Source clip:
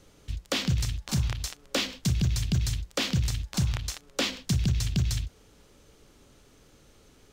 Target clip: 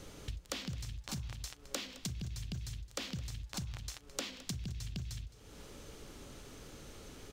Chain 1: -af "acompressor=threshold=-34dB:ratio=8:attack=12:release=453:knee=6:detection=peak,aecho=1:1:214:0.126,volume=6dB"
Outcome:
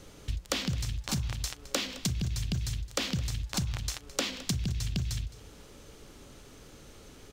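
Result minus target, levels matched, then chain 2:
compressor: peak gain reduction -9.5 dB
-af "acompressor=threshold=-45dB:ratio=8:attack=12:release=453:knee=6:detection=peak,aecho=1:1:214:0.126,volume=6dB"

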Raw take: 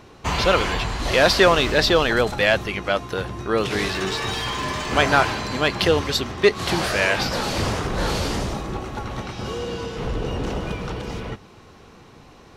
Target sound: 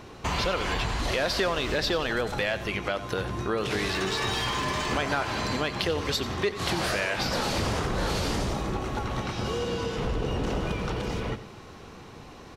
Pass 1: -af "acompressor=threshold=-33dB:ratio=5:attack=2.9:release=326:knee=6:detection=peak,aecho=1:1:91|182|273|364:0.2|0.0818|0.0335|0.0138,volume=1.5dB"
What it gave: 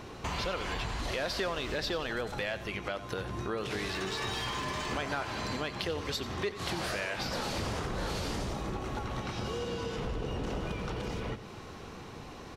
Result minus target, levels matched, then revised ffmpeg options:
compressor: peak gain reduction +7 dB
-af "acompressor=threshold=-24.5dB:ratio=5:attack=2.9:release=326:knee=6:detection=peak,aecho=1:1:91|182|273|364:0.2|0.0818|0.0335|0.0138,volume=1.5dB"

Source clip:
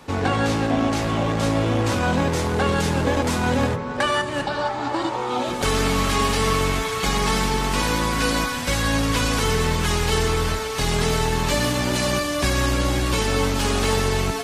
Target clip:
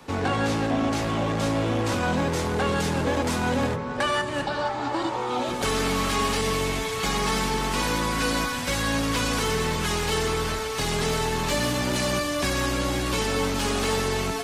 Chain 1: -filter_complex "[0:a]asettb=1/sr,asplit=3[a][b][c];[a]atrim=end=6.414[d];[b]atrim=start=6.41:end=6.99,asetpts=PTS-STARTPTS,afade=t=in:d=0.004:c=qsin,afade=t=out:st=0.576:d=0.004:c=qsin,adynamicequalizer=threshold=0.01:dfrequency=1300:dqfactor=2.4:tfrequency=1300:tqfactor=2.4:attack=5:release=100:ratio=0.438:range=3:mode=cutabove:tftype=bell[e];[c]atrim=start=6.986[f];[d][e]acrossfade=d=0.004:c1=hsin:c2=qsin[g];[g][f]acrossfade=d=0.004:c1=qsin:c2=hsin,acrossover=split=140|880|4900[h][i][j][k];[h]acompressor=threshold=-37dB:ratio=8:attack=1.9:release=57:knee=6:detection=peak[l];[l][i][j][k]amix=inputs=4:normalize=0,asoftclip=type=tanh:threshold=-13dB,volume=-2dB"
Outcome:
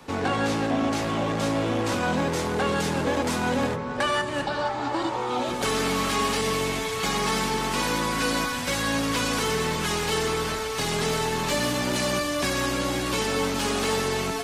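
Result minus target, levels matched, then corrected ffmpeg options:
compressor: peak gain reduction +8.5 dB
-filter_complex "[0:a]asettb=1/sr,asplit=3[a][b][c];[a]atrim=end=6.414[d];[b]atrim=start=6.41:end=6.99,asetpts=PTS-STARTPTS,afade=t=in:d=0.004:c=qsin,afade=t=out:st=0.576:d=0.004:c=qsin,adynamicequalizer=threshold=0.01:dfrequency=1300:dqfactor=2.4:tfrequency=1300:tqfactor=2.4:attack=5:release=100:ratio=0.438:range=3:mode=cutabove:tftype=bell[e];[c]atrim=start=6.986[f];[d][e]acrossfade=d=0.004:c1=hsin:c2=qsin[g];[g][f]acrossfade=d=0.004:c1=qsin:c2=hsin,acrossover=split=140|880|4900[h][i][j][k];[h]acompressor=threshold=-27.5dB:ratio=8:attack=1.9:release=57:knee=6:detection=peak[l];[l][i][j][k]amix=inputs=4:normalize=0,asoftclip=type=tanh:threshold=-13dB,volume=-2dB"

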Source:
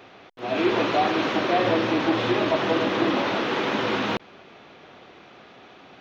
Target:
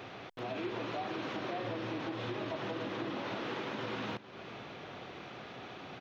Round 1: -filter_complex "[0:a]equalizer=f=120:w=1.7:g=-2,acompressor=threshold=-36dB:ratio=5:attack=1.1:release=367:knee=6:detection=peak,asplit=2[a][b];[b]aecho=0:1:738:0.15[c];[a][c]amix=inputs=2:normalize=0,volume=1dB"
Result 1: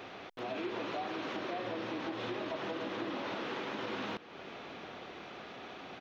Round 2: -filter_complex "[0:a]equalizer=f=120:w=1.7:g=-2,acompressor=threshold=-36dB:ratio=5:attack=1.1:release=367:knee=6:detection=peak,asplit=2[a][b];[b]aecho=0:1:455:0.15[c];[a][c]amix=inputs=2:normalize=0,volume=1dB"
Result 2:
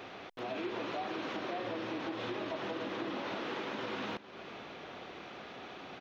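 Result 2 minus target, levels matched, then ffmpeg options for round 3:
125 Hz band -6.5 dB
-filter_complex "[0:a]equalizer=f=120:w=1.7:g=7,acompressor=threshold=-36dB:ratio=5:attack=1.1:release=367:knee=6:detection=peak,asplit=2[a][b];[b]aecho=0:1:455:0.15[c];[a][c]amix=inputs=2:normalize=0,volume=1dB"

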